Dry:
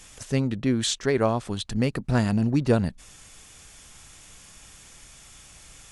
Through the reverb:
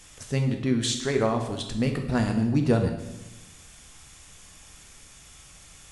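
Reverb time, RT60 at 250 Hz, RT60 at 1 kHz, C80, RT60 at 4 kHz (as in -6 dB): 1.0 s, 1.2 s, 0.95 s, 9.5 dB, 0.85 s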